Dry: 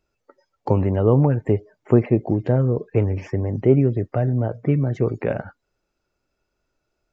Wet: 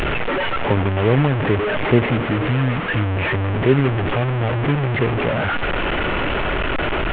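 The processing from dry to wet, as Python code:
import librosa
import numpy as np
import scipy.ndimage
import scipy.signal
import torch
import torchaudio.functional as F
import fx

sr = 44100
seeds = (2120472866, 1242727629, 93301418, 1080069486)

y = fx.delta_mod(x, sr, bps=16000, step_db=-14.0)
y = fx.spec_repair(y, sr, seeds[0], start_s=2.07, length_s=0.95, low_hz=330.0, high_hz=1000.0, source='both')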